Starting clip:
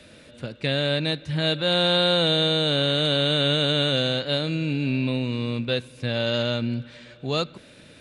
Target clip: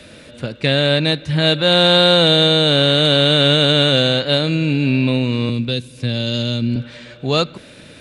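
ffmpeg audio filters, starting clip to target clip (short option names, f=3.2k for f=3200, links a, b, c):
-filter_complex "[0:a]asettb=1/sr,asplit=3[a][b][c];[a]atrim=end=5.494[d];[b]atrim=start=5.49:end=6.76,asetpts=PTS-STARTPTS,afade=t=in:d=0.004:c=qsin,afade=t=out:st=1.266:d=0.004:c=qsin,acrossover=split=370|3000[e][f][g];[f]acompressor=threshold=-45dB:ratio=3[h];[e][h][g]amix=inputs=3:normalize=0[i];[c]atrim=start=6.756[j];[d][i]acrossfade=d=0.004:c1=hsin:c2=qsin[k];[k][j]acrossfade=d=0.004:c1=qsin:c2=hsin,aeval=exprs='0.299*(cos(1*acos(clip(val(0)/0.299,-1,1)))-cos(1*PI/2))+0.0106*(cos(3*acos(clip(val(0)/0.299,-1,1)))-cos(3*PI/2))':c=same,volume=9dB"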